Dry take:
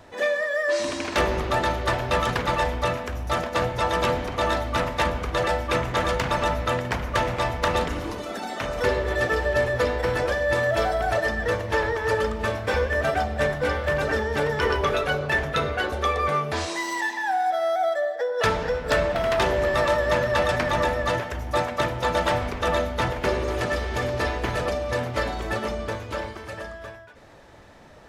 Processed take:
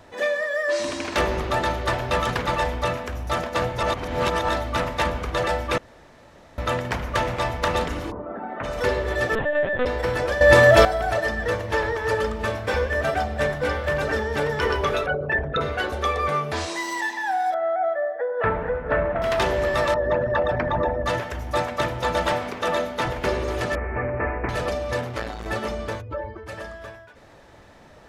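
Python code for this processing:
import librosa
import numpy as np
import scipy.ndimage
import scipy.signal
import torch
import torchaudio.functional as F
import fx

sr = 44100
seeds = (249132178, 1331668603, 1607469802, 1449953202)

y = fx.lowpass(x, sr, hz=fx.line((8.1, 1100.0), (8.63, 2000.0)), slope=24, at=(8.1, 8.63), fade=0.02)
y = fx.lpc_vocoder(y, sr, seeds[0], excitation='pitch_kept', order=10, at=(9.35, 9.86))
y = fx.envelope_sharpen(y, sr, power=2.0, at=(15.06, 15.61))
y = fx.lowpass(y, sr, hz=2000.0, slope=24, at=(17.54, 19.22))
y = fx.envelope_sharpen(y, sr, power=2.0, at=(19.94, 21.06))
y = fx.highpass(y, sr, hz=160.0, slope=12, at=(22.33, 23.06))
y = fx.steep_lowpass(y, sr, hz=2400.0, slope=72, at=(23.75, 24.49))
y = fx.transformer_sat(y, sr, knee_hz=630.0, at=(25.01, 25.46))
y = fx.spec_expand(y, sr, power=2.0, at=(26.0, 26.46), fade=0.02)
y = fx.edit(y, sr, fx.reverse_span(start_s=3.83, length_s=0.66),
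    fx.room_tone_fill(start_s=5.78, length_s=0.8),
    fx.clip_gain(start_s=10.41, length_s=0.44, db=10.0), tone=tone)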